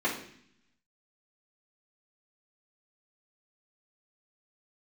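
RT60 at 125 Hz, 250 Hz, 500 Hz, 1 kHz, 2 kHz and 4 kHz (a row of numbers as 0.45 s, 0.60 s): 1.0 s, 1.0 s, 0.65 s, 0.60 s, 0.75 s, 0.80 s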